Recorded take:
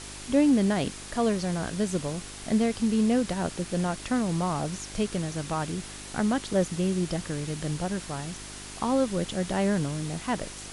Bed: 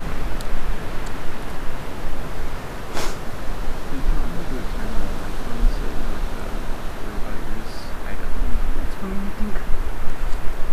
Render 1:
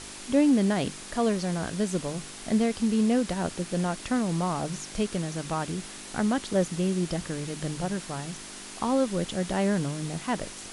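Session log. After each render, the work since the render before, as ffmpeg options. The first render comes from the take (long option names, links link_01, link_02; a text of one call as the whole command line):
ffmpeg -i in.wav -af "bandreject=frequency=50:width_type=h:width=4,bandreject=frequency=100:width_type=h:width=4,bandreject=frequency=150:width_type=h:width=4" out.wav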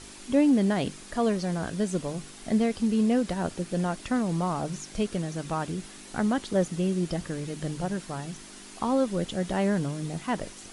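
ffmpeg -i in.wav -af "afftdn=noise_reduction=6:noise_floor=-42" out.wav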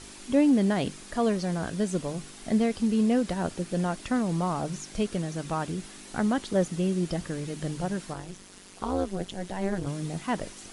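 ffmpeg -i in.wav -filter_complex "[0:a]asettb=1/sr,asplit=3[link_01][link_02][link_03];[link_01]atrim=end=8.134[link_04];[link_02]atrim=start=8.13:end=9.87,asetpts=PTS-STARTPTS,afade=type=in:duration=0.004:curve=qsin,afade=type=out:start_time=1.736:duration=0.004:curve=qsin,tremolo=f=190:d=0.947[link_05];[link_03]atrim=start=9.866[link_06];[link_04][link_05]acrossfade=duration=0.004:curve1=hsin:curve2=qsin[link_07];[link_07][link_06]acrossfade=duration=0.004:curve1=qsin:curve2=hsin" out.wav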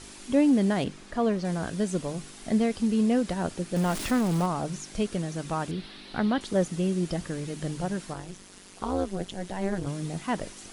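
ffmpeg -i in.wav -filter_complex "[0:a]asettb=1/sr,asplit=3[link_01][link_02][link_03];[link_01]atrim=end=0.844[link_04];[link_02]atrim=start=0.84:end=1.45,asetpts=PTS-STARTPTS,afade=type=in:duration=0.004:curve=qsin,afade=type=out:start_time=0.606:duration=0.004:curve=qsin,aemphasis=mode=reproduction:type=50kf[link_05];[link_03]atrim=start=1.446[link_06];[link_04][link_05]acrossfade=duration=0.004:curve1=hsin:curve2=qsin[link_07];[link_07][link_06]acrossfade=duration=0.004:curve1=qsin:curve2=hsin,asettb=1/sr,asplit=3[link_08][link_09][link_10];[link_08]atrim=end=3.764[link_11];[link_09]atrim=start=3.76:end=4.46,asetpts=PTS-STARTPTS,afade=type=in:duration=0.004:curve=qsin,afade=type=out:start_time=0.696:duration=0.004:curve=qsin,aeval=exprs='val(0)+0.5*0.0316*sgn(val(0))':channel_layout=same[link_12];[link_10]atrim=start=4.456[link_13];[link_11][link_12]acrossfade=duration=0.004:curve1=hsin:curve2=qsin[link_14];[link_14][link_13]acrossfade=duration=0.004:curve1=qsin:curve2=hsin,asettb=1/sr,asplit=3[link_15][link_16][link_17];[link_15]atrim=end=5.714[link_18];[link_16]atrim=start=5.71:end=6.41,asetpts=PTS-STARTPTS,afade=type=in:duration=0.004:curve=qsin,afade=type=out:start_time=0.696:duration=0.004:curve=qsin,highshelf=frequency=5300:width_type=q:width=3:gain=-10[link_19];[link_17]atrim=start=6.406[link_20];[link_18][link_19]acrossfade=duration=0.004:curve1=hsin:curve2=qsin[link_21];[link_21][link_20]acrossfade=duration=0.004:curve1=qsin:curve2=hsin" out.wav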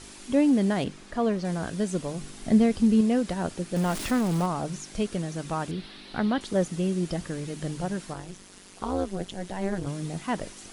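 ffmpeg -i in.wav -filter_complex "[0:a]asettb=1/sr,asplit=3[link_01][link_02][link_03];[link_01]atrim=end=2.214[link_04];[link_02]atrim=start=2.21:end=3.01,asetpts=PTS-STARTPTS,afade=type=in:duration=0.004:curve=qsin,afade=type=out:start_time=0.796:duration=0.004:curve=qsin,lowshelf=frequency=300:gain=7.5[link_05];[link_03]atrim=start=3.006[link_06];[link_04][link_05]acrossfade=duration=0.004:curve1=hsin:curve2=qsin[link_07];[link_07][link_06]acrossfade=duration=0.004:curve1=qsin:curve2=hsin" out.wav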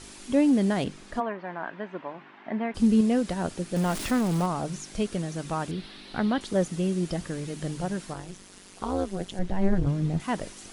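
ffmpeg -i in.wav -filter_complex "[0:a]asplit=3[link_01][link_02][link_03];[link_01]afade=type=out:start_time=1.19:duration=0.02[link_04];[link_02]highpass=410,equalizer=frequency=470:width_type=q:width=4:gain=-9,equalizer=frequency=940:width_type=q:width=4:gain=8,equalizer=frequency=1700:width_type=q:width=4:gain=4,lowpass=frequency=2500:width=0.5412,lowpass=frequency=2500:width=1.3066,afade=type=in:start_time=1.19:duration=0.02,afade=type=out:start_time=2.74:duration=0.02[link_05];[link_03]afade=type=in:start_time=2.74:duration=0.02[link_06];[link_04][link_05][link_06]amix=inputs=3:normalize=0,asettb=1/sr,asplit=3[link_07][link_08][link_09];[link_07]atrim=end=9.394[link_10];[link_08]atrim=start=9.39:end=10.2,asetpts=PTS-STARTPTS,afade=type=in:duration=0.004:curve=qsin,afade=type=out:start_time=0.806:duration=0.004:curve=qsin,aemphasis=mode=reproduction:type=bsi[link_11];[link_09]atrim=start=10.196[link_12];[link_10][link_11]acrossfade=duration=0.004:curve1=hsin:curve2=qsin[link_13];[link_13][link_12]acrossfade=duration=0.004:curve1=qsin:curve2=hsin" out.wav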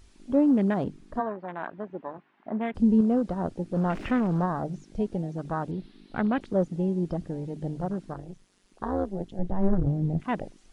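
ffmpeg -i in.wav -filter_complex "[0:a]acrossover=split=6800[link_01][link_02];[link_02]acompressor=threshold=-56dB:ratio=4:attack=1:release=60[link_03];[link_01][link_03]amix=inputs=2:normalize=0,afwtdn=0.0158" out.wav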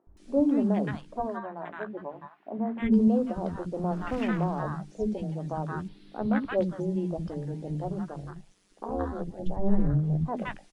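ffmpeg -i in.wav -filter_complex "[0:a]asplit=2[link_01][link_02];[link_02]adelay=14,volume=-11dB[link_03];[link_01][link_03]amix=inputs=2:normalize=0,acrossover=split=270|1000[link_04][link_05][link_06];[link_04]adelay=70[link_07];[link_06]adelay=170[link_08];[link_07][link_05][link_08]amix=inputs=3:normalize=0" out.wav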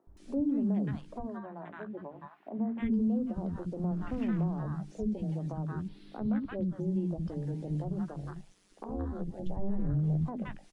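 ffmpeg -i in.wav -filter_complex "[0:a]acrossover=split=300[link_01][link_02];[link_01]alimiter=level_in=0.5dB:limit=-24dB:level=0:latency=1,volume=-0.5dB[link_03];[link_02]acompressor=threshold=-42dB:ratio=10[link_04];[link_03][link_04]amix=inputs=2:normalize=0" out.wav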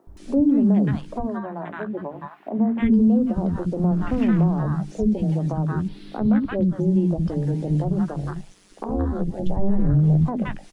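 ffmpeg -i in.wav -af "volume=12dB" out.wav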